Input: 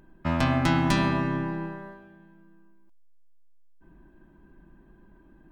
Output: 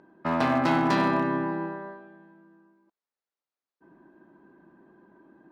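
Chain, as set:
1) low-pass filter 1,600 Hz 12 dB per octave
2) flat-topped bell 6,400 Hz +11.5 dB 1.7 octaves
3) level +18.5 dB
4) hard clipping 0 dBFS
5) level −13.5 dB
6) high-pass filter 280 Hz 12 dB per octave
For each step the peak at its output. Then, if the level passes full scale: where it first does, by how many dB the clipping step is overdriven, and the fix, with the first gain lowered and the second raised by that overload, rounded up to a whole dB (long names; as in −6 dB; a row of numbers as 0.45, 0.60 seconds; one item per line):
−10.5, −10.5, +8.0, 0.0, −13.5, −11.0 dBFS
step 3, 8.0 dB
step 3 +10.5 dB, step 5 −5.5 dB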